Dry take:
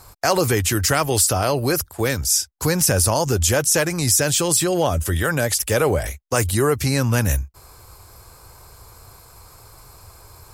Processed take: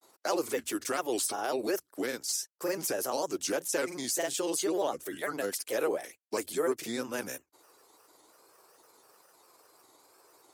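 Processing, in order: ladder high-pass 270 Hz, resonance 40%; granulator, spray 26 ms, pitch spread up and down by 3 st; trim -4 dB

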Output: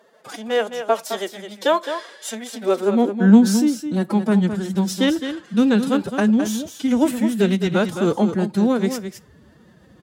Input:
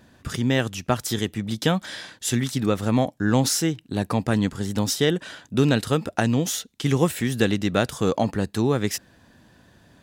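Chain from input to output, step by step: tilt shelf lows +3.5 dB, about 1.1 kHz; formant-preserving pitch shift +10.5 st; high-pass sweep 580 Hz -> 67 Hz, 2.57–4.10 s; delay 213 ms -9 dB; on a send at -17.5 dB: reverberation RT60 0.35 s, pre-delay 5 ms

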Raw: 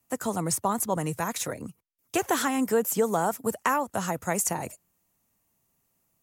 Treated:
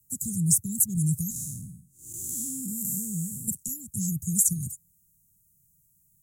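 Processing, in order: 1.30–3.48 s: spectral blur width 225 ms; elliptic band-stop 160–7400 Hz, stop band 70 dB; loudness maximiser +16.5 dB; Shepard-style phaser falling 0.66 Hz; trim -7.5 dB

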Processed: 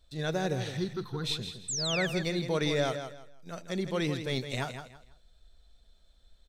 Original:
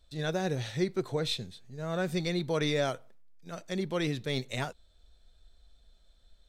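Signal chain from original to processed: 0.77–1.24 s: static phaser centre 2.2 kHz, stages 6; 1.68–2.07 s: painted sound fall 1.6–8.4 kHz -33 dBFS; feedback delay 163 ms, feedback 26%, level -9 dB

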